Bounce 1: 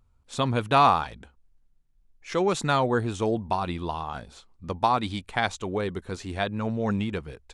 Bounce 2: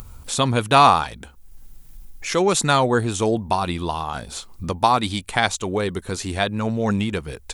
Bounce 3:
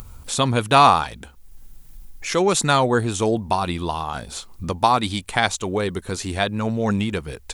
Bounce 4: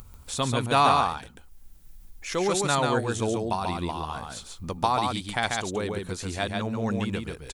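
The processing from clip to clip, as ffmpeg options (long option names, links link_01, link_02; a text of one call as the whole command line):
ffmpeg -i in.wav -af "aemphasis=mode=production:type=50fm,acompressor=mode=upward:threshold=-28dB:ratio=2.5,volume=5.5dB" out.wav
ffmpeg -i in.wav -af "acrusher=bits=10:mix=0:aa=0.000001" out.wav
ffmpeg -i in.wav -af "aecho=1:1:140:0.668,volume=-7.5dB" out.wav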